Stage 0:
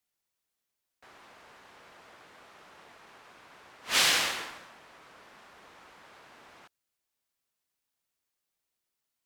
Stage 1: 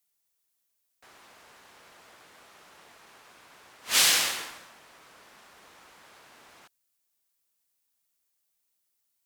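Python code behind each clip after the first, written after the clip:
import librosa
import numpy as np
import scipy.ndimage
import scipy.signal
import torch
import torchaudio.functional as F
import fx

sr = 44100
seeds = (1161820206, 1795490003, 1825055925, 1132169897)

y = fx.high_shelf(x, sr, hz=5400.0, db=11.5)
y = F.gain(torch.from_numpy(y), -1.5).numpy()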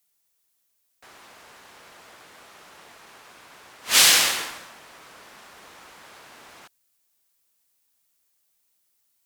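y = fx.rider(x, sr, range_db=10, speed_s=0.5)
y = F.gain(torch.from_numpy(y), 8.5).numpy()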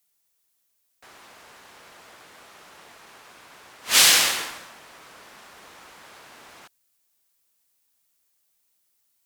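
y = x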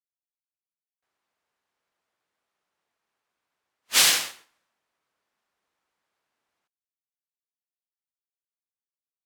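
y = fx.upward_expand(x, sr, threshold_db=-35.0, expansion=2.5)
y = F.gain(torch.from_numpy(y), -2.0).numpy()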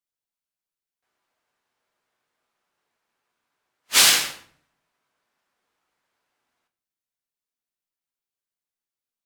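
y = fx.room_shoebox(x, sr, seeds[0], volume_m3=50.0, walls='mixed', distance_m=0.36)
y = F.gain(torch.from_numpy(y), 2.5).numpy()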